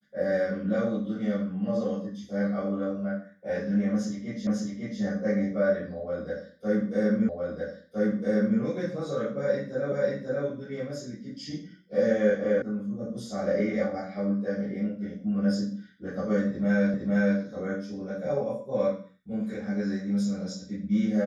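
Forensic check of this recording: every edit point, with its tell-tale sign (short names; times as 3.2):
4.47 repeat of the last 0.55 s
7.29 repeat of the last 1.31 s
9.92 repeat of the last 0.54 s
12.62 sound cut off
16.94 repeat of the last 0.46 s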